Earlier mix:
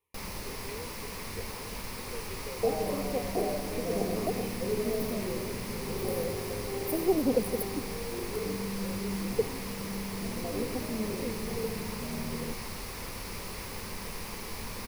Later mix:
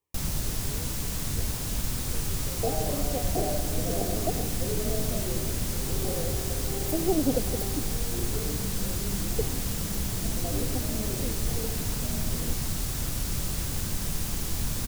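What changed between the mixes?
speech: add air absorption 430 m; first sound: add tone controls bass +14 dB, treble +11 dB; master: remove ripple EQ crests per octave 0.87, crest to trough 7 dB

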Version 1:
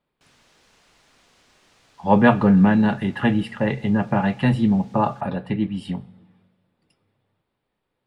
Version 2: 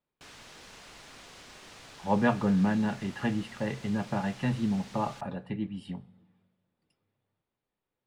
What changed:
speech -10.5 dB; background +8.5 dB

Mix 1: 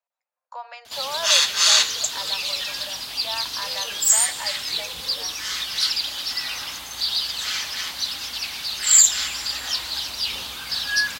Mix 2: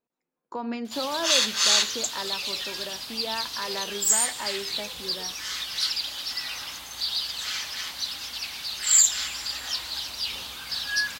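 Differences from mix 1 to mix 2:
speech: remove steep high-pass 550 Hz 72 dB/oct; background -4.5 dB

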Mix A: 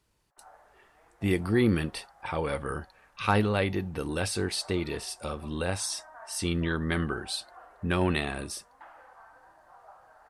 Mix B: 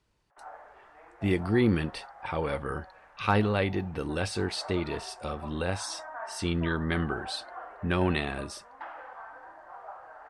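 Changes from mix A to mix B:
speech: add air absorption 60 m; background +8.5 dB

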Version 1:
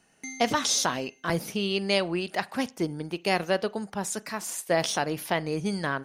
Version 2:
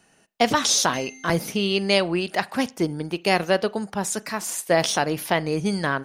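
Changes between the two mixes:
speech +5.0 dB; background: entry +0.70 s

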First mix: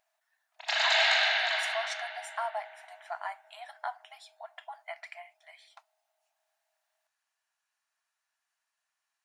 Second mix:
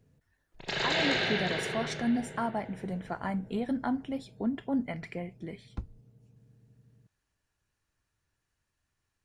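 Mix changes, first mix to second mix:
background -5.0 dB; master: remove brick-wall FIR high-pass 610 Hz

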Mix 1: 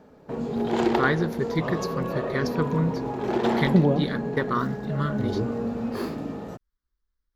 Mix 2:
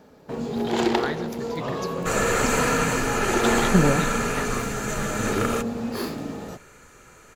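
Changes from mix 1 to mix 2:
speech -10.0 dB; second sound: unmuted; master: add high shelf 2600 Hz +10 dB

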